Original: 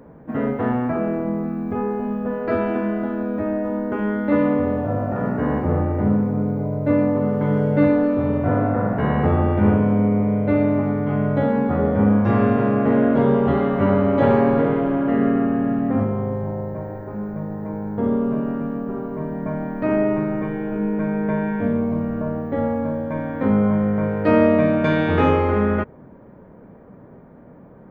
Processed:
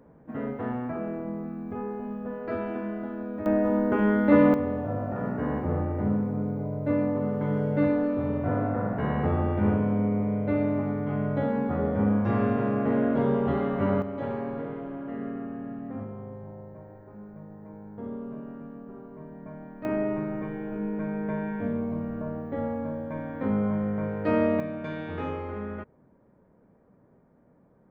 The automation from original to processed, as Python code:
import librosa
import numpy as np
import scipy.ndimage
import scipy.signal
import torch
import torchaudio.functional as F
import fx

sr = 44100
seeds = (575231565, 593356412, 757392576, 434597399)

y = fx.gain(x, sr, db=fx.steps((0.0, -10.0), (3.46, 0.0), (4.54, -7.5), (14.02, -16.0), (19.85, -8.5), (24.6, -16.0)))